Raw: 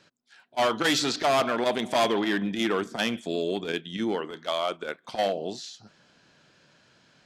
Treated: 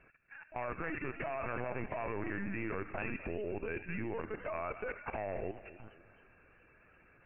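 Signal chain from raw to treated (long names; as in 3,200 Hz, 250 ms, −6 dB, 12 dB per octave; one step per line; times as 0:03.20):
low-shelf EQ 90 Hz +8.5 dB
delay with a high-pass on its return 85 ms, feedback 44%, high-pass 1,600 Hz, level −5 dB
in parallel at −0.5 dB: brickwall limiter −22.5 dBFS, peak gain reduction 9.5 dB
on the sum: linear-phase brick-wall low-pass 2,800 Hz
downward compressor 8 to 1, threshold −33 dBFS, peak gain reduction 16 dB
linear-prediction vocoder at 8 kHz pitch kept
high-shelf EQ 2,200 Hz +5.5 dB
output level in coarse steps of 13 dB
feedback echo with a swinging delay time 252 ms, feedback 41%, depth 182 cents, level −16 dB
level +1 dB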